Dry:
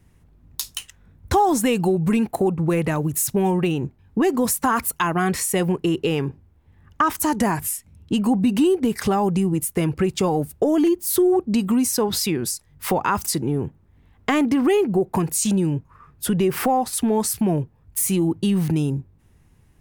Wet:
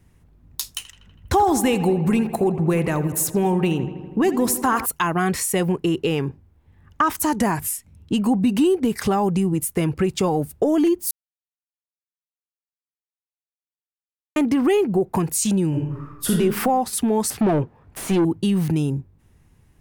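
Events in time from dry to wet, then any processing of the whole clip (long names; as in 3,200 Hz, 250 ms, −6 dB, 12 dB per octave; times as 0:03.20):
0:00.74–0:04.86: feedback echo with a low-pass in the loop 81 ms, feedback 75%, low-pass 3,500 Hz, level −13 dB
0:11.11–0:14.36: silence
0:15.68–0:16.32: thrown reverb, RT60 0.95 s, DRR −2 dB
0:17.30–0:18.25: mid-hump overdrive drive 23 dB, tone 1,100 Hz, clips at −10.5 dBFS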